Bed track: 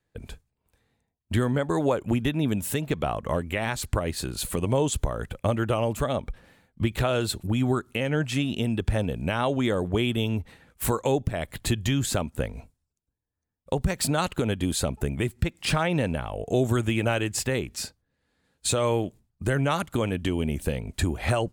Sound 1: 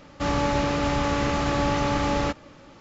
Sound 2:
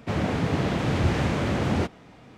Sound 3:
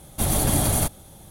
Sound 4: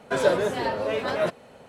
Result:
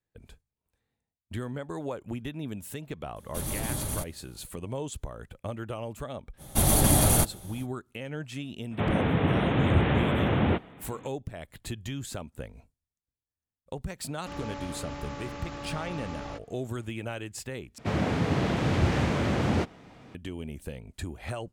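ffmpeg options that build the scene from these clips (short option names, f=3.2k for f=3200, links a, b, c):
-filter_complex "[3:a]asplit=2[a][b];[2:a]asplit=2[c][d];[0:a]volume=-11dB[e];[a]bandreject=f=720:w=5.4[f];[c]aresample=8000,aresample=44100[g];[e]asplit=2[h][i];[h]atrim=end=17.784[j];[d]atrim=end=2.37,asetpts=PTS-STARTPTS,volume=-1.5dB[k];[i]atrim=start=20.146[l];[f]atrim=end=1.3,asetpts=PTS-STARTPTS,volume=-11dB,afade=t=in:d=0.004:c=hsin,afade=t=out:st=1.296:d=0.004:c=hsin,adelay=3160[m];[b]atrim=end=1.3,asetpts=PTS-STARTPTS,afade=t=in:d=0.05,afade=t=out:st=1.25:d=0.05,adelay=6370[n];[g]atrim=end=2.37,asetpts=PTS-STARTPTS,afade=t=in:d=0.004:c=hsin,afade=t=out:st=2.366:d=0.004:c=hsin,adelay=8710[o];[1:a]atrim=end=2.8,asetpts=PTS-STARTPTS,volume=-15dB,afade=t=in:d=0.004:c=hsin,afade=t=out:st=2.796:d=0.004:c=hsin,adelay=14060[p];[j][k]acrossfade=d=0.004:c1=hsin:c2=hsin[q];[q][l]acrossfade=d=0.004:c1=hsin:c2=hsin[r];[r][m][n][o][p]amix=inputs=5:normalize=0"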